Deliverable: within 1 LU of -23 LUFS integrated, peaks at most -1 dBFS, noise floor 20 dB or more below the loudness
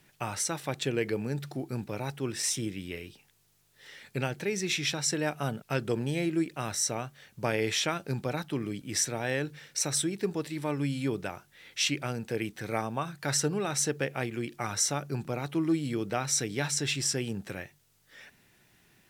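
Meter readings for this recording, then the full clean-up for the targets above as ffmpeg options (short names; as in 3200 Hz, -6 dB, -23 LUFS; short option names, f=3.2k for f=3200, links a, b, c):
loudness -31.0 LUFS; peak -13.0 dBFS; loudness target -23.0 LUFS
-> -af "volume=8dB"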